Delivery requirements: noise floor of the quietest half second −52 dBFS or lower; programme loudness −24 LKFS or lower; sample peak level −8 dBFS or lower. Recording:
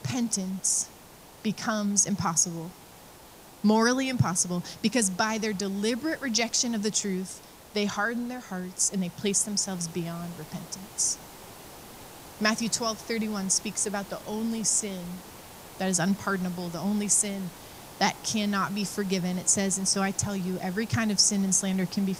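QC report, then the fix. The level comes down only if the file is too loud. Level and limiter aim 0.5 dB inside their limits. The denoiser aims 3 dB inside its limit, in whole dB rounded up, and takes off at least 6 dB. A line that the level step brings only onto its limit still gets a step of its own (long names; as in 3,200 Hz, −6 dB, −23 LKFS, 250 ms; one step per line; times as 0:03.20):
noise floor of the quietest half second −50 dBFS: out of spec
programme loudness −27.0 LKFS: in spec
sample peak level −9.0 dBFS: in spec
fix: broadband denoise 6 dB, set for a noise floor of −50 dBFS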